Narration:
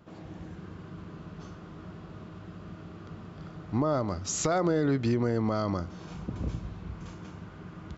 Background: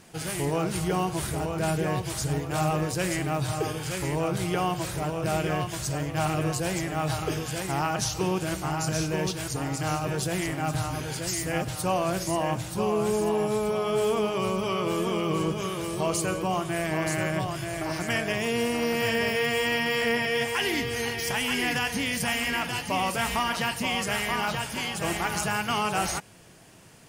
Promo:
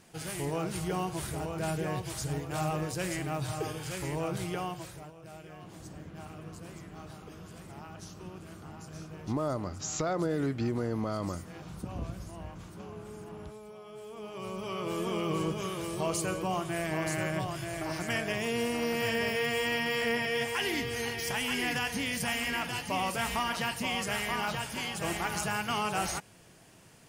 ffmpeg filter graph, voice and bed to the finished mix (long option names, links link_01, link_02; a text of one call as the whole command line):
ffmpeg -i stem1.wav -i stem2.wav -filter_complex "[0:a]adelay=5550,volume=-4.5dB[link_01];[1:a]volume=10.5dB,afade=type=out:start_time=4.37:duration=0.77:silence=0.177828,afade=type=in:start_time=14.1:duration=1.11:silence=0.149624[link_02];[link_01][link_02]amix=inputs=2:normalize=0" out.wav